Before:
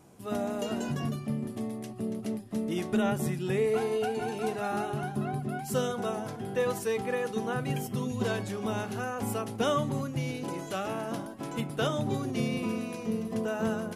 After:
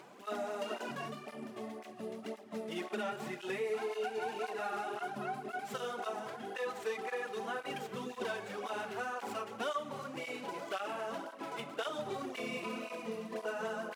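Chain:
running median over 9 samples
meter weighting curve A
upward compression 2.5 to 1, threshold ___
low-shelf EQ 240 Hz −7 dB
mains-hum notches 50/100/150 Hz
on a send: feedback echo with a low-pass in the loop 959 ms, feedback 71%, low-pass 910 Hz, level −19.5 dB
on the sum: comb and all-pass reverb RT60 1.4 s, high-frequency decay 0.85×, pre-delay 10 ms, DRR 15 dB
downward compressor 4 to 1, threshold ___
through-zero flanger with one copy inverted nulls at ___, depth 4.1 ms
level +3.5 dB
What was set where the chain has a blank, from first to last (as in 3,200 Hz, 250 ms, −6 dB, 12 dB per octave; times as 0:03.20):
−46 dBFS, −35 dBFS, 1.9 Hz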